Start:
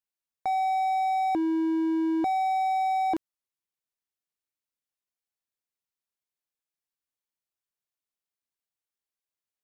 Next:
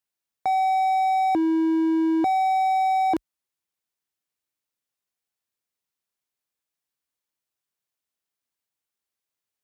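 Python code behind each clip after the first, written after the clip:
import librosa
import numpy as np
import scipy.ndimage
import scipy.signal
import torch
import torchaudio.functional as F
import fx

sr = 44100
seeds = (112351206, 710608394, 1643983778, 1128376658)

y = scipy.signal.sosfilt(scipy.signal.butter(4, 43.0, 'highpass', fs=sr, output='sos'), x)
y = y * 10.0 ** (4.5 / 20.0)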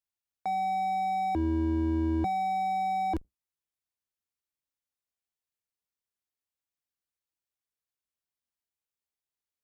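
y = fx.octave_divider(x, sr, octaves=2, level_db=1.0)
y = y * 10.0 ** (-8.0 / 20.0)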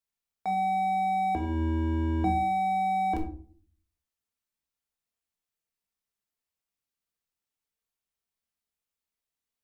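y = fx.room_shoebox(x, sr, seeds[0], volume_m3=420.0, walls='furnished', distance_m=1.6)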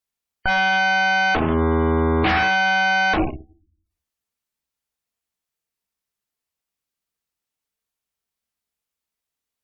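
y = fx.rattle_buzz(x, sr, strikes_db=-37.0, level_db=-35.0)
y = fx.cheby_harmonics(y, sr, harmonics=(8,), levels_db=(-6,), full_scale_db=-15.5)
y = fx.spec_gate(y, sr, threshold_db=-30, keep='strong')
y = y * 10.0 ** (4.0 / 20.0)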